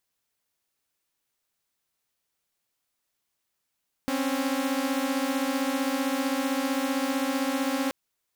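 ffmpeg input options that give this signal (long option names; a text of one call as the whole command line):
ffmpeg -f lavfi -i "aevalsrc='0.0531*((2*mod(261.63*t,1)-1)+(2*mod(277.18*t,1)-1))':duration=3.83:sample_rate=44100" out.wav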